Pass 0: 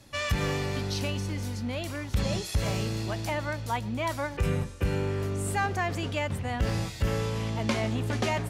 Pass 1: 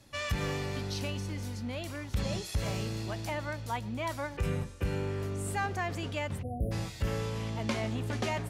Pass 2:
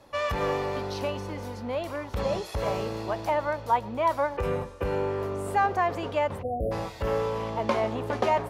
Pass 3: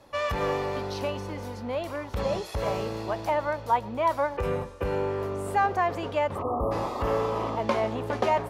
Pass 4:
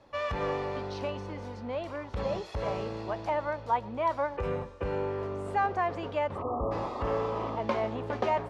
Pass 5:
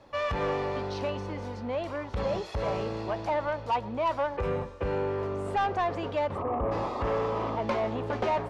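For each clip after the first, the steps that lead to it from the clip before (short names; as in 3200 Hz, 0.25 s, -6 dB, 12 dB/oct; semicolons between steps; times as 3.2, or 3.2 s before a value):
spectral delete 6.43–6.72, 740–9200 Hz; gain -4.5 dB
graphic EQ 125/500/1000/8000 Hz -4/+10/+11/-6 dB
painted sound noise, 6.35–7.56, 220–1300 Hz -33 dBFS
air absorption 89 m; gain -3.5 dB
soft clip -24.5 dBFS, distortion -15 dB; gain +3.5 dB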